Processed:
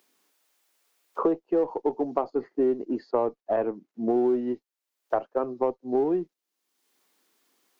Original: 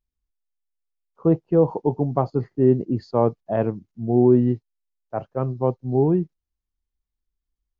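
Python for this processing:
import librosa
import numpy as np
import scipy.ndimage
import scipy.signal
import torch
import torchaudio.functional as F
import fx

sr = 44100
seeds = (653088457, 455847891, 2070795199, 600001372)

p1 = scipy.signal.sosfilt(scipy.signal.butter(4, 280.0, 'highpass', fs=sr, output='sos'), x)
p2 = fx.clip_asym(p1, sr, top_db=-30.0, bottom_db=-13.0)
p3 = p1 + (p2 * librosa.db_to_amplitude(-12.0))
p4 = fx.band_squash(p3, sr, depth_pct=100)
y = p4 * librosa.db_to_amplitude(-5.0)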